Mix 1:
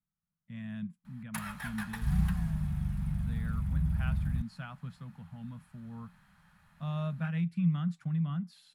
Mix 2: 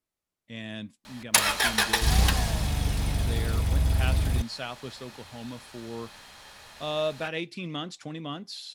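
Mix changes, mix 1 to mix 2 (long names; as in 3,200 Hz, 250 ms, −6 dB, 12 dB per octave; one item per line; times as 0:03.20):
background +7.5 dB
master: remove drawn EQ curve 120 Hz 0 dB, 170 Hz +14 dB, 350 Hz −27 dB, 820 Hz −11 dB, 1,400 Hz −5 dB, 3,800 Hz −20 dB, 5,800 Hz −22 dB, 11,000 Hz −12 dB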